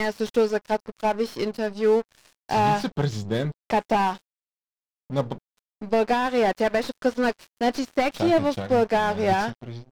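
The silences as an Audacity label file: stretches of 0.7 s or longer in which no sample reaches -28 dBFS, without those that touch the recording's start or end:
4.140000	5.120000	silence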